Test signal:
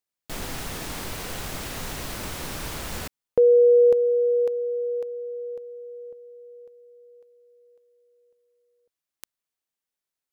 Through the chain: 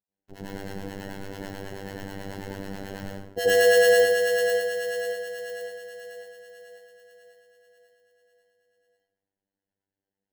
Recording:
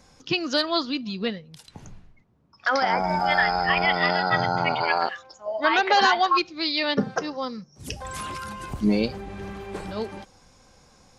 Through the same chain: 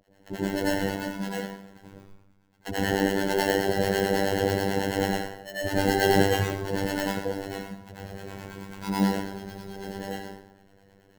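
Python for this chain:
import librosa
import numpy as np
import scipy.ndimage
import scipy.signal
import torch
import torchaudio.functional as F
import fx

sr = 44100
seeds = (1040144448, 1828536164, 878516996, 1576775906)

y = fx.sample_hold(x, sr, seeds[0], rate_hz=1200.0, jitter_pct=0)
y = fx.low_shelf(y, sr, hz=160.0, db=-3.0)
y = fx.harmonic_tremolo(y, sr, hz=9.2, depth_pct=100, crossover_hz=640.0)
y = fx.rev_plate(y, sr, seeds[1], rt60_s=0.78, hf_ratio=0.7, predelay_ms=75, drr_db=-8.5)
y = fx.robotise(y, sr, hz=98.1)
y = fx.peak_eq(y, sr, hz=10000.0, db=-3.0, octaves=0.77)
y = y * 10.0 ** (-4.5 / 20.0)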